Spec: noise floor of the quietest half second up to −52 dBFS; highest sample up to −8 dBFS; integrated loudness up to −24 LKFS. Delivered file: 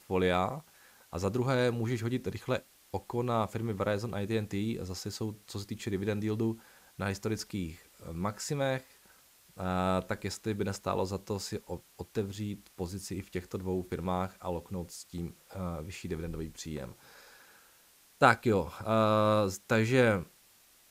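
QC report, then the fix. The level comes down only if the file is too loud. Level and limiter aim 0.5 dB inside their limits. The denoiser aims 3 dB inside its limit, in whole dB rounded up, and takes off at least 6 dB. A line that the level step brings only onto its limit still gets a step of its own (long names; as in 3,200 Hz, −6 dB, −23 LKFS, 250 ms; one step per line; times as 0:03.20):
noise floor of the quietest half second −62 dBFS: in spec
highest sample −7.5 dBFS: out of spec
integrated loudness −33.0 LKFS: in spec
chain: brickwall limiter −8.5 dBFS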